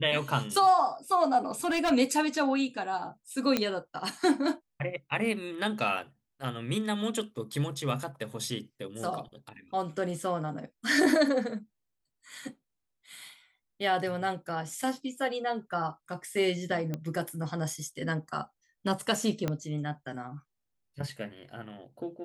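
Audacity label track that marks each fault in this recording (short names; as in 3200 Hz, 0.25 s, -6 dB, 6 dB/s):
1.460000	1.920000	clipped -23.5 dBFS
3.570000	3.570000	pop -11 dBFS
16.940000	16.940000	pop -20 dBFS
19.480000	19.480000	pop -16 dBFS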